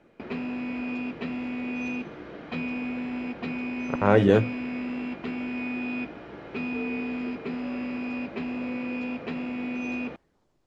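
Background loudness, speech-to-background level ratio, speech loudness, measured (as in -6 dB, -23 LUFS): -32.5 LUFS, 10.0 dB, -22.5 LUFS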